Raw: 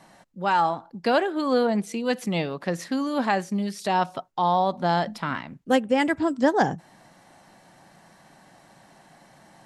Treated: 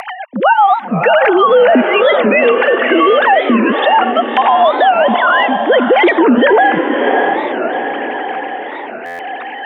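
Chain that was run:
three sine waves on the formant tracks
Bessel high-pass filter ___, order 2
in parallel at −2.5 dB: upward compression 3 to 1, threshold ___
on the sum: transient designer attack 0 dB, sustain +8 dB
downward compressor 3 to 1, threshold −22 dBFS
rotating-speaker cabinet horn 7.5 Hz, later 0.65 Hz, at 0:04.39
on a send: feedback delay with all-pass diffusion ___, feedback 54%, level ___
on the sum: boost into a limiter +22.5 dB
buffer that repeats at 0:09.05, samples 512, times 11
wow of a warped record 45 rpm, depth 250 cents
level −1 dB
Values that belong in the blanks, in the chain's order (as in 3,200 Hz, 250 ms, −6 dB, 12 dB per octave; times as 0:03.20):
580 Hz, −32 dBFS, 612 ms, −9 dB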